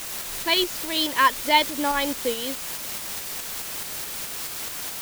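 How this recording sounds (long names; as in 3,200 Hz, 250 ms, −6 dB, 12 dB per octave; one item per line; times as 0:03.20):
a quantiser's noise floor 6 bits, dither triangular
tremolo saw up 4.7 Hz, depth 35%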